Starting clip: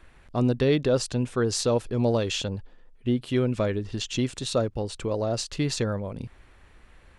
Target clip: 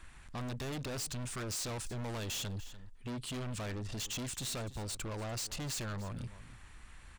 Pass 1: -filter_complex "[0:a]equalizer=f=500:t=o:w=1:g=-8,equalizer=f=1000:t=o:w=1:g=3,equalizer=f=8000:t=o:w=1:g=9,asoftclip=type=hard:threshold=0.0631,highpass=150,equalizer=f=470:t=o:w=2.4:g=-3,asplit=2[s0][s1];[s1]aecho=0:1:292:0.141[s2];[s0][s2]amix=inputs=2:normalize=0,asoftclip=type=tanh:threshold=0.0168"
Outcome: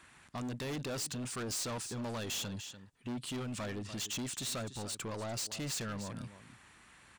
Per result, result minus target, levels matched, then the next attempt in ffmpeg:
hard clipper: distortion -6 dB; 125 Hz band -3.5 dB
-filter_complex "[0:a]equalizer=f=500:t=o:w=1:g=-8,equalizer=f=1000:t=o:w=1:g=3,equalizer=f=8000:t=o:w=1:g=9,asoftclip=type=hard:threshold=0.0211,highpass=150,equalizer=f=470:t=o:w=2.4:g=-3,asplit=2[s0][s1];[s1]aecho=0:1:292:0.141[s2];[s0][s2]amix=inputs=2:normalize=0,asoftclip=type=tanh:threshold=0.0168"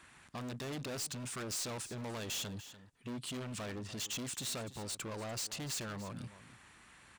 125 Hz band -4.0 dB
-filter_complex "[0:a]equalizer=f=500:t=o:w=1:g=-8,equalizer=f=1000:t=o:w=1:g=3,equalizer=f=8000:t=o:w=1:g=9,asoftclip=type=hard:threshold=0.0211,equalizer=f=470:t=o:w=2.4:g=-3,asplit=2[s0][s1];[s1]aecho=0:1:292:0.141[s2];[s0][s2]amix=inputs=2:normalize=0,asoftclip=type=tanh:threshold=0.0168"

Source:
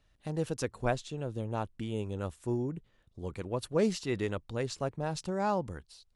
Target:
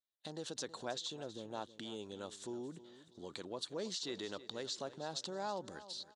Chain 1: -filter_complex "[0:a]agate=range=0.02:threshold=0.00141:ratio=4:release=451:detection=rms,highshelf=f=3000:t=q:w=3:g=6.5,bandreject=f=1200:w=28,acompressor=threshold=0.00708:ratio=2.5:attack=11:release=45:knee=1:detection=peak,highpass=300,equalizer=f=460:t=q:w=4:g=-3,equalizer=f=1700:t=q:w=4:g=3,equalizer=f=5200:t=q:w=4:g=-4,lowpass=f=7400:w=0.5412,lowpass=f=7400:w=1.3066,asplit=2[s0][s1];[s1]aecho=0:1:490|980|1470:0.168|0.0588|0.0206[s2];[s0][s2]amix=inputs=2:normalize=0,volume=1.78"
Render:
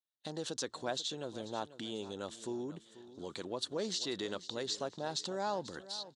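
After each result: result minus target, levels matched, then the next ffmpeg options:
echo 169 ms late; compression: peak gain reduction -4.5 dB
-filter_complex "[0:a]agate=range=0.02:threshold=0.00141:ratio=4:release=451:detection=rms,highshelf=f=3000:t=q:w=3:g=6.5,bandreject=f=1200:w=28,acompressor=threshold=0.00708:ratio=2.5:attack=11:release=45:knee=1:detection=peak,highpass=300,equalizer=f=460:t=q:w=4:g=-3,equalizer=f=1700:t=q:w=4:g=3,equalizer=f=5200:t=q:w=4:g=-4,lowpass=f=7400:w=0.5412,lowpass=f=7400:w=1.3066,asplit=2[s0][s1];[s1]aecho=0:1:321|642|963:0.168|0.0588|0.0206[s2];[s0][s2]amix=inputs=2:normalize=0,volume=1.78"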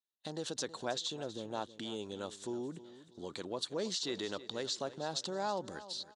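compression: peak gain reduction -4.5 dB
-filter_complex "[0:a]agate=range=0.02:threshold=0.00141:ratio=4:release=451:detection=rms,highshelf=f=3000:t=q:w=3:g=6.5,bandreject=f=1200:w=28,acompressor=threshold=0.00299:ratio=2.5:attack=11:release=45:knee=1:detection=peak,highpass=300,equalizer=f=460:t=q:w=4:g=-3,equalizer=f=1700:t=q:w=4:g=3,equalizer=f=5200:t=q:w=4:g=-4,lowpass=f=7400:w=0.5412,lowpass=f=7400:w=1.3066,asplit=2[s0][s1];[s1]aecho=0:1:321|642|963:0.168|0.0588|0.0206[s2];[s0][s2]amix=inputs=2:normalize=0,volume=1.78"

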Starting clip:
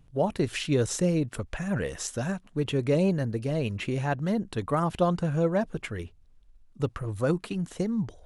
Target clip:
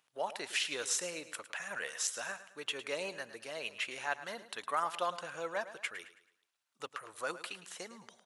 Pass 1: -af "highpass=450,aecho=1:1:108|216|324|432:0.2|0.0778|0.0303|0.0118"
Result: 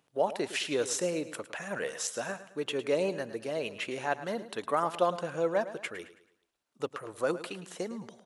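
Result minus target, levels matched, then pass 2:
500 Hz band +6.0 dB
-af "highpass=1100,aecho=1:1:108|216|324|432:0.2|0.0778|0.0303|0.0118"

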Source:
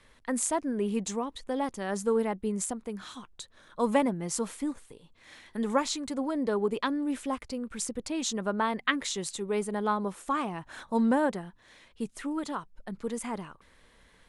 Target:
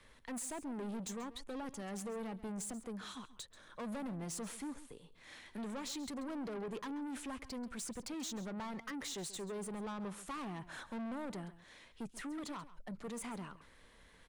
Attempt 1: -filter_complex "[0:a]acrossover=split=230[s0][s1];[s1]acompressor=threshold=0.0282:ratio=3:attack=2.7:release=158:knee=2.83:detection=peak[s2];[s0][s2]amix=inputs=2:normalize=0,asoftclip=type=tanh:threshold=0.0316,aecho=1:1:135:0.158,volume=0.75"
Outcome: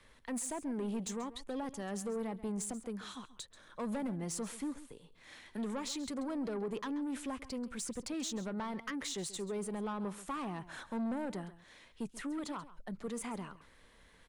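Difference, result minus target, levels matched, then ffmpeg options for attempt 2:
saturation: distortion -5 dB
-filter_complex "[0:a]acrossover=split=230[s0][s1];[s1]acompressor=threshold=0.0282:ratio=3:attack=2.7:release=158:knee=2.83:detection=peak[s2];[s0][s2]amix=inputs=2:normalize=0,asoftclip=type=tanh:threshold=0.0141,aecho=1:1:135:0.158,volume=0.75"

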